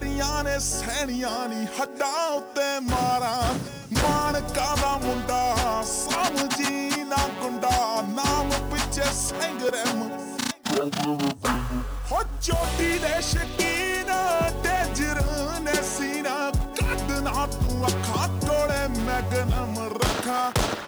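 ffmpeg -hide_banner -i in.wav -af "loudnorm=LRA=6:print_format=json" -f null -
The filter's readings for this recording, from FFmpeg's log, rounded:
"input_i" : "-25.4",
"input_tp" : "-11.7",
"input_lra" : "1.8",
"input_thresh" : "-35.4",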